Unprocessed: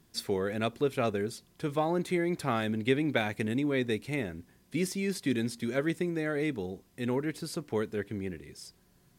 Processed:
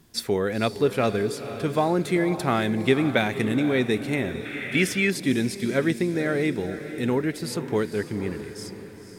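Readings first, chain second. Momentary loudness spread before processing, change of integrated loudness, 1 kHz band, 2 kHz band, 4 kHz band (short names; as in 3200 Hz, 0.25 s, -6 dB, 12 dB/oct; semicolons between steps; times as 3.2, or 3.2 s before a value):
9 LU, +7.0 dB, +7.0 dB, +8.5 dB, +7.5 dB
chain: diffused feedback echo 0.497 s, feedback 49%, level -11 dB; spectral gain 4.45–5.1, 1200–3600 Hz +10 dB; gain +6.5 dB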